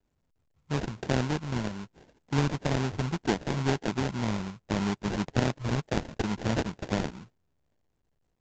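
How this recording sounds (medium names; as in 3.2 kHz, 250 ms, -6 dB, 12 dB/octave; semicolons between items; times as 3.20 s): a buzz of ramps at a fixed pitch in blocks of 16 samples; phasing stages 8, 1.9 Hz, lowest notch 530–3400 Hz; aliases and images of a low sample rate 1.2 kHz, jitter 20%; µ-law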